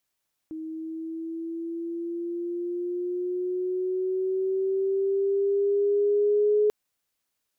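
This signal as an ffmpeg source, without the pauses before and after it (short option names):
-f lavfi -i "aevalsrc='pow(10,(-18+14.5*(t/6.19-1))/20)*sin(2*PI*316*6.19/(5*log(2)/12)*(exp(5*log(2)/12*t/6.19)-1))':d=6.19:s=44100"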